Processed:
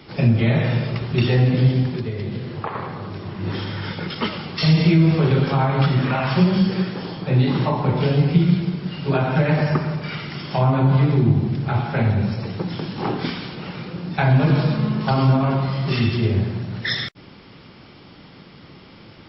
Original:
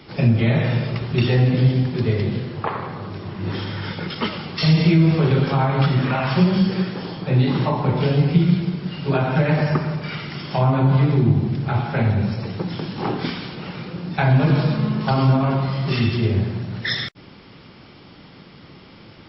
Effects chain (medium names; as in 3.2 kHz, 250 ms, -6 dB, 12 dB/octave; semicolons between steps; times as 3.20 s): 1.93–2.75 s: compression 6:1, threshold -23 dBFS, peak gain reduction 9 dB